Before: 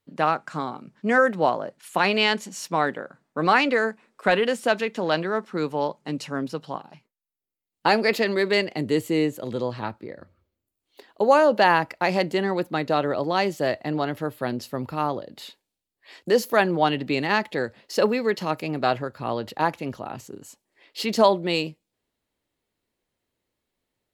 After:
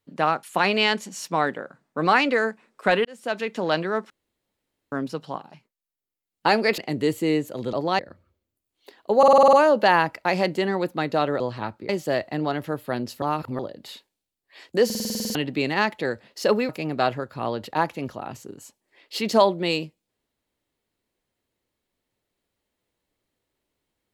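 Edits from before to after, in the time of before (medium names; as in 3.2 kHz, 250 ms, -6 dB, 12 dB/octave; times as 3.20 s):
0.43–1.83 s: delete
4.45–4.94 s: fade in
5.50–6.32 s: room tone
8.18–8.66 s: delete
9.61–10.10 s: swap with 13.16–13.42 s
11.29 s: stutter 0.05 s, 8 plays
14.75–15.12 s: reverse
16.38 s: stutter in place 0.05 s, 10 plays
18.22–18.53 s: delete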